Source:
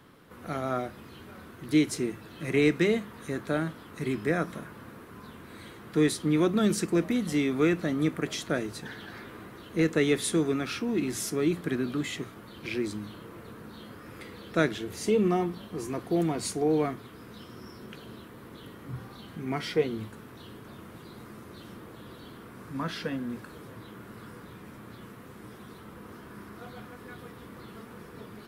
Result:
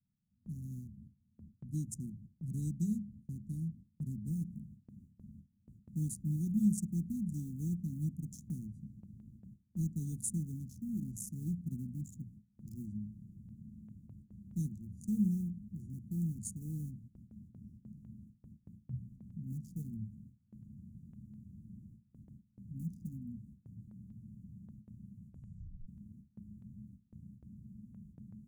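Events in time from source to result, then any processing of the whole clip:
4.31 noise floor step -64 dB -56 dB
22.12–22.65 echo throw 0.55 s, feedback 70%, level -6 dB
25.1 tape stop 0.78 s
whole clip: Wiener smoothing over 41 samples; Chebyshev band-stop 210–6700 Hz, order 4; gate with hold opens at -43 dBFS; gain -1.5 dB

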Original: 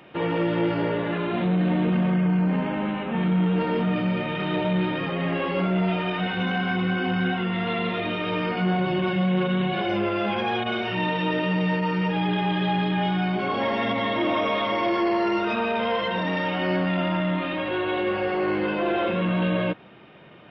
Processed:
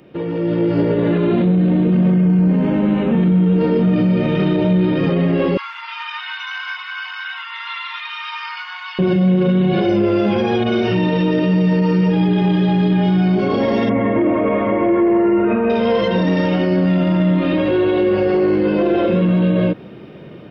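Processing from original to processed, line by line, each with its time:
5.57–8.99 steep high-pass 890 Hz 96 dB/oct
13.89–15.7 steep low-pass 2400 Hz
whole clip: band shelf 1600 Hz -11 dB 2.8 oct; limiter -23 dBFS; AGC gain up to 8.5 dB; gain +6 dB

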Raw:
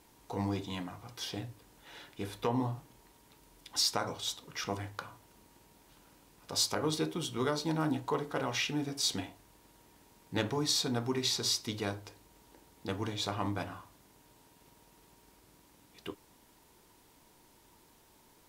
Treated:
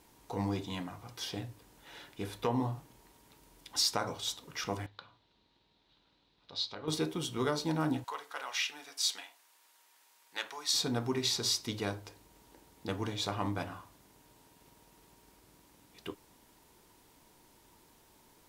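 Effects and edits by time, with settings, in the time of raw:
4.86–6.88 ladder low-pass 4200 Hz, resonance 70%
8.04–10.74 HPF 1100 Hz

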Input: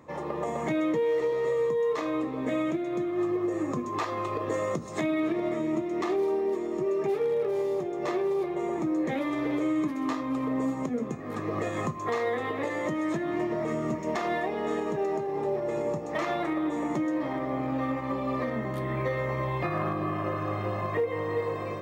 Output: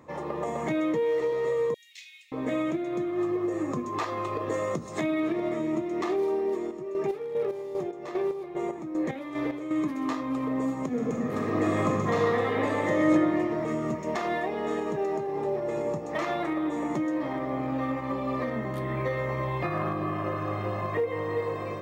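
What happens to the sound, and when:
1.74–2.32 steep high-pass 2300 Hz 48 dB/oct
6.55–9.71 chopper 2.5 Hz, depth 60%, duty 40%
10.86–13.1 reverb throw, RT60 2.2 s, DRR -2.5 dB

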